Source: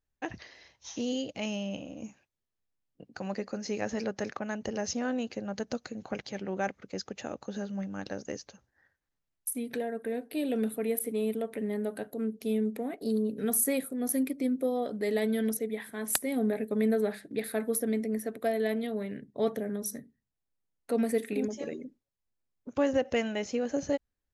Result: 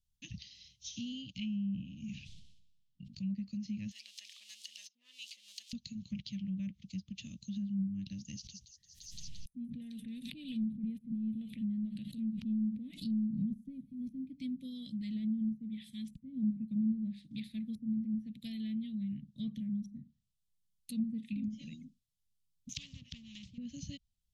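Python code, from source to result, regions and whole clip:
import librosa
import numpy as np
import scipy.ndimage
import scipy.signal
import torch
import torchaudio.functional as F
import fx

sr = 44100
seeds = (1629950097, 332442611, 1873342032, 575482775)

y = fx.chain(x, sr, fx.lowpass(hz=4300.0, slope=12),
    fx.sustainer(db_per_s=48.0), at=(1.38, 3.27))
y = fx.chain(y, sr, fx.crossing_spikes(level_db=-32.5),
    fx.highpass(hz=800.0, slope=24), at=(3.91, 5.73))
y = fx.chain(y, sr, fx.echo_wet_highpass(ms=172, feedback_pct=44, hz=4200.0, wet_db=-7.0),
    fx.pre_swell(db_per_s=52.0), at=(8.33, 14.26))
y = fx.chain(y, sr, fx.tilt_eq(slope=3.5),
    fx.spectral_comp(ratio=4.0), at=(22.69, 23.58))
y = scipy.signal.sosfilt(scipy.signal.ellip(3, 1.0, 40, [190.0, 3100.0], 'bandstop', fs=sr, output='sos'), y)
y = fx.env_lowpass_down(y, sr, base_hz=330.0, full_db=-33.0)
y = y * 10.0 ** (3.5 / 20.0)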